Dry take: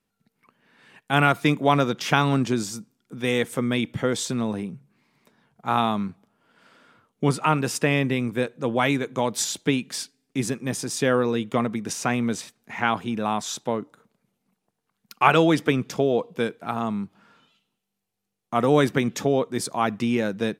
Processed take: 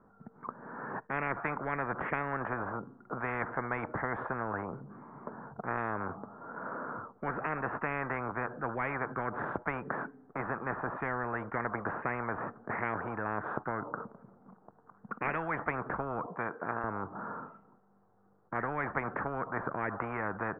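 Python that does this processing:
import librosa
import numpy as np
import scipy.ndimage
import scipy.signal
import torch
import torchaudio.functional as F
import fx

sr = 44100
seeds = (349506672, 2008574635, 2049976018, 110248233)

y = fx.highpass(x, sr, hz=980.0, slope=6, at=(16.26, 16.84))
y = scipy.signal.sosfilt(scipy.signal.butter(8, 1400.0, 'lowpass', fs=sr, output='sos'), y)
y = fx.low_shelf(y, sr, hz=460.0, db=-8.0)
y = fx.spectral_comp(y, sr, ratio=10.0)
y = F.gain(torch.from_numpy(y), -9.0).numpy()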